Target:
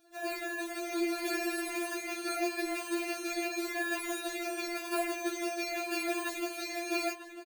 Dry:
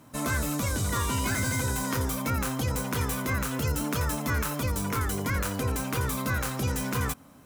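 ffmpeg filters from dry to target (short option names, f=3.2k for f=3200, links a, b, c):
-filter_complex "[0:a]afftfilt=real='re*pow(10,12/40*sin(2*PI*(0.54*log(max(b,1)*sr/1024/100)/log(2)-(-0.88)*(pts-256)/sr)))':imag='im*pow(10,12/40*sin(2*PI*(0.54*log(max(b,1)*sr/1024/100)/log(2)-(-0.88)*(pts-256)/sr)))':win_size=1024:overlap=0.75,acrusher=samples=22:mix=1:aa=0.000001,asplit=2[a][b];[b]adelay=947,lowpass=f=4k:p=1,volume=-11dB,asplit=2[c][d];[d]adelay=947,lowpass=f=4k:p=1,volume=0.24,asplit=2[e][f];[f]adelay=947,lowpass=f=4k:p=1,volume=0.24[g];[a][c][e][g]amix=inputs=4:normalize=0,adynamicequalizer=threshold=0.00141:dfrequency=2400:dqfactor=4.9:tfrequency=2400:tqfactor=4.9:attack=5:release=100:ratio=0.375:range=4:mode=boostabove:tftype=bell,dynaudnorm=f=250:g=7:m=4dB,highpass=92,aecho=1:1:3.4:0.76,afftfilt=real='re*4*eq(mod(b,16),0)':imag='im*4*eq(mod(b,16),0)':win_size=2048:overlap=0.75,volume=-6dB"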